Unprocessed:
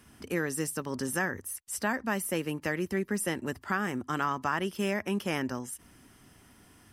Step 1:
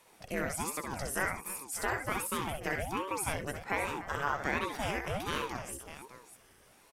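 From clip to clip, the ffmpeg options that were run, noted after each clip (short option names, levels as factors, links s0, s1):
-af "lowshelf=f=150:g=-12,aecho=1:1:63|69|292|600:0.376|0.335|0.178|0.237,aeval=exprs='val(0)*sin(2*PI*450*n/s+450*0.7/1.3*sin(2*PI*1.3*n/s))':c=same"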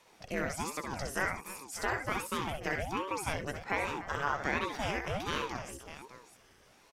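-af "highshelf=f=7600:t=q:w=1.5:g=-6.5"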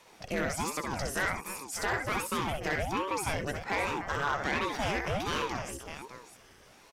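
-af "asoftclip=type=tanh:threshold=0.0473,volume=1.78"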